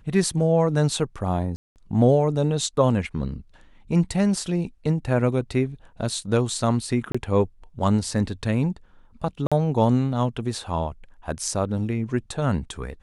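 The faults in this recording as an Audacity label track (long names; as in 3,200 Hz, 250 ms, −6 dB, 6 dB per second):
1.560000	1.760000	drop-out 199 ms
7.120000	7.140000	drop-out 25 ms
9.470000	9.520000	drop-out 46 ms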